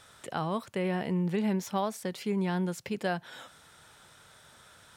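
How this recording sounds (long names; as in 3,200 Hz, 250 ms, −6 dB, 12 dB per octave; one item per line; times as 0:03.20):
background noise floor −57 dBFS
spectral slope −6.0 dB per octave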